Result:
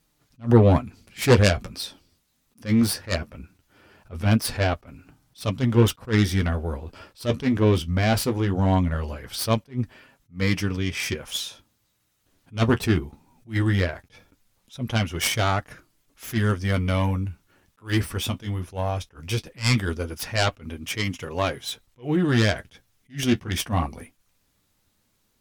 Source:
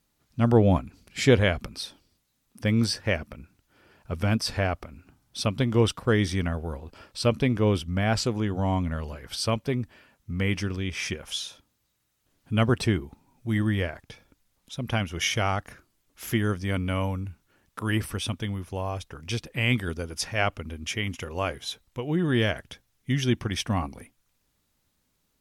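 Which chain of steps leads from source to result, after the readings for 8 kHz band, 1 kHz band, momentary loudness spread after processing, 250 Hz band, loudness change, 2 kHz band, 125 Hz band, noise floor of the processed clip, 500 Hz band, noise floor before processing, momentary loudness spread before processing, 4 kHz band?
+3.5 dB, +3.0 dB, 14 LU, +3.0 dB, +3.0 dB, +1.5 dB, +3.5 dB, -70 dBFS, +2.0 dB, -74 dBFS, 14 LU, +2.0 dB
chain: self-modulated delay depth 0.27 ms; flange 0.19 Hz, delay 6.3 ms, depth 6.7 ms, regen -38%; attack slew limiter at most 270 dB/s; gain +8 dB

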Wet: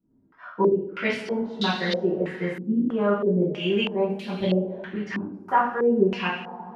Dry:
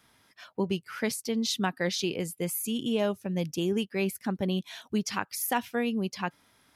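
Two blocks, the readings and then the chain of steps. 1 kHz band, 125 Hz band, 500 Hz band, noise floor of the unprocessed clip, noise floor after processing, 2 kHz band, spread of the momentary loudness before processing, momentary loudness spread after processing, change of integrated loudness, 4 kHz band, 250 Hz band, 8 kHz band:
+8.5 dB, +4.5 dB, +8.5 dB, -65 dBFS, -60 dBFS, +5.5 dB, 4 LU, 9 LU, +5.5 dB, +2.0 dB, +5.0 dB, under -15 dB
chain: pump 85 bpm, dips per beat 1, -10 dB, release 0.242 s; two-slope reverb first 0.54 s, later 3.9 s, from -18 dB, DRR -9 dB; stepped low-pass 3.1 Hz 280–3900 Hz; gain -6 dB

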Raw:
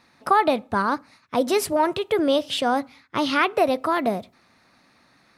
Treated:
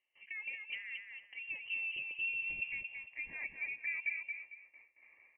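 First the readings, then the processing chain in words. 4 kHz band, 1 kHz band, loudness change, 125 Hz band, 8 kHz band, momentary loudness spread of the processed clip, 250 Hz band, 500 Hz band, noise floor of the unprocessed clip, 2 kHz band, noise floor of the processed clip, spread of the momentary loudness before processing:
-20.5 dB, under -40 dB, -16.0 dB, under -25 dB, under -40 dB, 10 LU, under -40 dB, under -40 dB, -60 dBFS, -7.5 dB, -71 dBFS, 7 LU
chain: de-esser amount 60%; gate with hold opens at -48 dBFS; spectral repair 1.73–2.7, 540–2100 Hz before; auto swell 0.375 s; compressor 8:1, threshold -37 dBFS, peak gain reduction 19 dB; overloaded stage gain 31.5 dB; fixed phaser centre 310 Hz, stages 8; high-pass sweep 62 Hz -> 610 Hz, 1.52–3.07; air absorption 490 m; feedback echo 0.226 s, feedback 29%, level -5 dB; inverted band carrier 3000 Hz

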